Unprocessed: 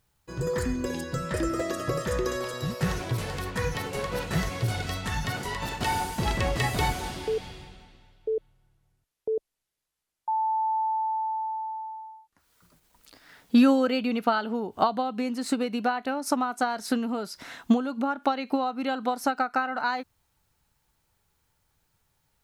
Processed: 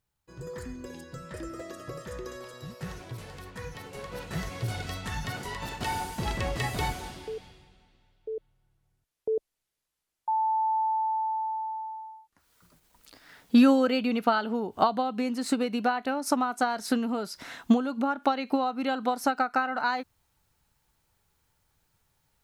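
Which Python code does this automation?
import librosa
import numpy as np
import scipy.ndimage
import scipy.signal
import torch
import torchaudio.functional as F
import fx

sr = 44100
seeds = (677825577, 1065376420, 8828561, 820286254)

y = fx.gain(x, sr, db=fx.line((3.76, -11.0), (4.71, -4.0), (6.87, -4.0), (7.64, -12.0), (9.31, 0.0)))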